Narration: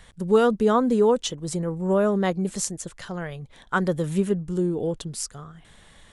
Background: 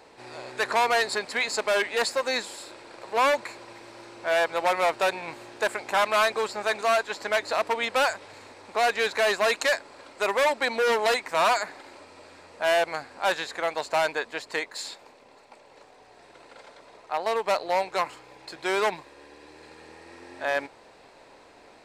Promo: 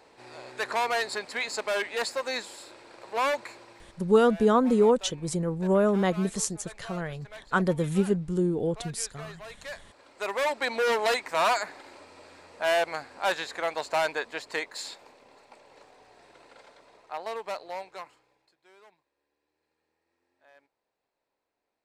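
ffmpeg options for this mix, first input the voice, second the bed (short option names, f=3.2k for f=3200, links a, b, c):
-filter_complex "[0:a]adelay=3800,volume=-1.5dB[a];[1:a]volume=14.5dB,afade=t=out:st=3.53:d=0.67:silence=0.149624,afade=t=in:st=9.58:d=1.22:silence=0.112202,afade=t=out:st=15.84:d=2.71:silence=0.0316228[b];[a][b]amix=inputs=2:normalize=0"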